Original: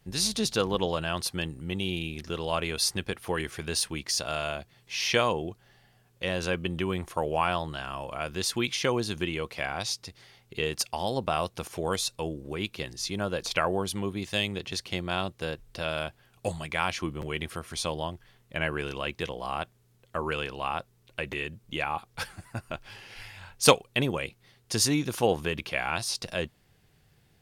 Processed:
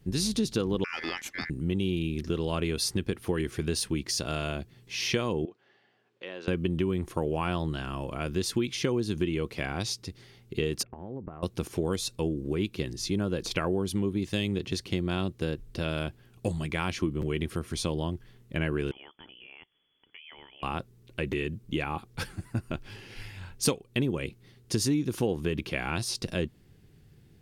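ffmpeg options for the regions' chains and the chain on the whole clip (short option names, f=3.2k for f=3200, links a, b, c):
-filter_complex "[0:a]asettb=1/sr,asplit=3[a][b][c];[a]atrim=end=0.844[d];[b]atrim=start=0.84:end=1.5,asetpts=PTS-STARTPTS,afade=t=in:d=0.004:c=qsin,afade=t=out:st=0.656:d=0.004:c=qsin,highshelf=f=7.9k:g=-12,aeval=exprs='val(0)*sin(2*PI*1900*n/s)':c=same[e];[c]atrim=start=1.496[f];[d][e]acrossfade=d=0.004:c1=hsin:c2=qsin[g];[g][f]acrossfade=d=0.004:c1=qsin:c2=hsin,asettb=1/sr,asplit=3[h][i][j];[h]atrim=end=5.454[k];[i]atrim=start=5.45:end=6.48,asetpts=PTS-STARTPTS,afade=t=in:d=0.004:c=qsin,afade=t=out:st=1.026:d=0.004:c=qsin,acompressor=threshold=-45dB:ratio=1.5:attack=3.2:release=140:knee=1:detection=peak,highpass=510,lowpass=3.3k[l];[j]atrim=start=6.476[m];[k][l]acrossfade=d=0.004:c1=hsin:c2=qsin[n];[n][m]acrossfade=d=0.004:c1=qsin:c2=hsin,asettb=1/sr,asplit=3[o][p][q];[o]atrim=end=10.834[r];[p]atrim=start=10.83:end=11.43,asetpts=PTS-STARTPTS,afade=t=in:d=0.004:c=qsin,afade=t=out:st=0.596:d=0.004:c=qsin,lowpass=f=1.6k:w=0.5412,lowpass=f=1.6k:w=1.3066,acompressor=threshold=-40dB:ratio=6:attack=3.2:release=140:knee=1:detection=peak[s];[q]atrim=start=11.426[t];[r][s]acrossfade=d=0.004:c1=hsin:c2=qsin[u];[u][t]acrossfade=d=0.004:c1=qsin:c2=hsin,asettb=1/sr,asplit=3[v][w][x];[v]atrim=end=18.914[y];[w]atrim=start=18.91:end=20.63,asetpts=PTS-STARTPTS,afade=t=in:d=0.004:c=qsin,afade=t=out:st=1.716:d=0.004:c=qsin,aemphasis=mode=production:type=bsi,acompressor=threshold=-49dB:ratio=3:attack=3.2:release=140:knee=1:detection=peak,lowpass=f=3k:t=q:w=0.5098,lowpass=f=3k:t=q:w=0.6013,lowpass=f=3k:t=q:w=0.9,lowpass=f=3k:t=q:w=2.563,afreqshift=-3500[z];[x]atrim=start=20.626[aa];[y][z]acrossfade=d=0.004:c1=hsin:c2=qsin[ab];[ab][aa]acrossfade=d=0.004:c1=qsin:c2=hsin,lowshelf=f=480:t=q:w=1.5:g=8.5,acompressor=threshold=-23dB:ratio=4,volume=-1.5dB"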